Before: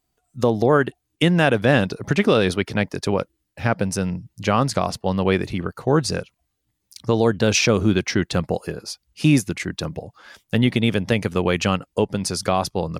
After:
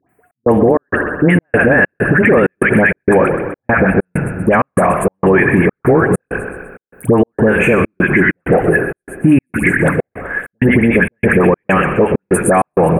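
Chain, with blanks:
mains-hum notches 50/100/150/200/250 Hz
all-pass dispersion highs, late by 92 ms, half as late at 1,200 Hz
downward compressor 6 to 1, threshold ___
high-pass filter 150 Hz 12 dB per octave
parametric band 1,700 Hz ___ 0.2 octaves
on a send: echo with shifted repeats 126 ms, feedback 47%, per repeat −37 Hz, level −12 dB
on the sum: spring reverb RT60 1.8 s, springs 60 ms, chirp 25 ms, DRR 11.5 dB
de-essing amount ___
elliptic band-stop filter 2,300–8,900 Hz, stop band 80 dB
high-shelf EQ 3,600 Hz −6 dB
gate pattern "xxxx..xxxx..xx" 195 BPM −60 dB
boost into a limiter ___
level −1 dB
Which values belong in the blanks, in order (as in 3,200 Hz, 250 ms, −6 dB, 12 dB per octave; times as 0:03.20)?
−20 dBFS, +12 dB, 25%, +19 dB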